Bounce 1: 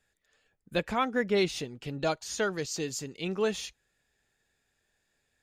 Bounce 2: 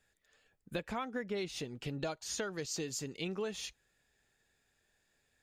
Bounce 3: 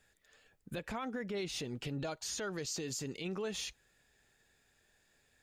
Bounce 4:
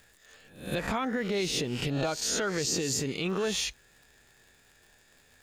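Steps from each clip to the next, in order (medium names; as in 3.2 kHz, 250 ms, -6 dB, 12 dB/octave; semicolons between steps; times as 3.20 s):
compression 6:1, threshold -35 dBFS, peak gain reduction 12.5 dB
peak limiter -35 dBFS, peak gain reduction 11 dB; trim +4.5 dB
reverse spectral sustain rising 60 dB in 0.47 s; crackle 80 per s -54 dBFS; trim +8 dB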